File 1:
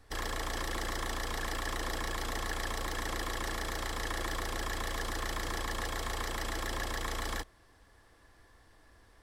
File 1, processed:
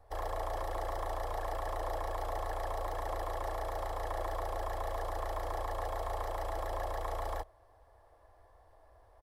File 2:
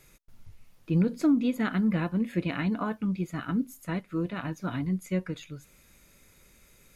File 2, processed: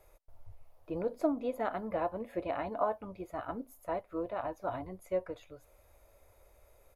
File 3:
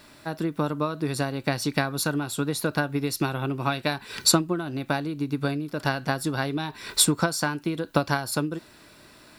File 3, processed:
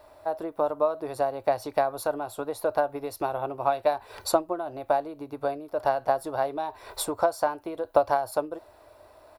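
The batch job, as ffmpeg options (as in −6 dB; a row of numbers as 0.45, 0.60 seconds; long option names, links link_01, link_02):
-af "firequalizer=gain_entry='entry(100,0);entry(150,-22);entry(320,-7);entry(620,10);entry(1500,-8);entry(2800,-12);entry(7500,-14);entry(11000,-7)':delay=0.05:min_phase=1,volume=-1dB"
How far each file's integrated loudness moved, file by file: −2.0, −7.5, −2.0 LU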